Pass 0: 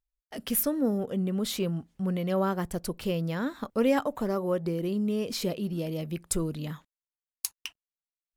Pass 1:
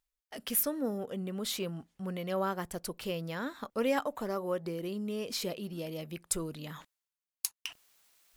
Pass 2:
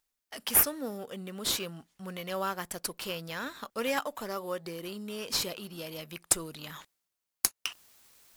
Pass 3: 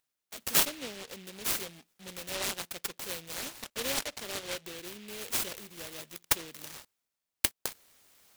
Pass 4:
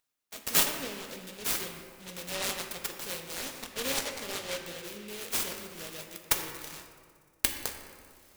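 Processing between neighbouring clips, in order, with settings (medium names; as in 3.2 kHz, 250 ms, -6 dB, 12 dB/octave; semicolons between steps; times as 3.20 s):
bass shelf 370 Hz -9.5 dB; reverse; upward compressor, threshold -40 dBFS; reverse; trim -1.5 dB
tilt shelf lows -7 dB, about 1.1 kHz; in parallel at -11.5 dB: sample-rate reducer 4.1 kHz, jitter 0%
high-pass 510 Hz 6 dB/octave; delay time shaken by noise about 2.7 kHz, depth 0.28 ms
feedback echo behind a high-pass 60 ms, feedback 84%, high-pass 5.4 kHz, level -22.5 dB; on a send at -3.5 dB: reverberation RT60 2.0 s, pre-delay 4 ms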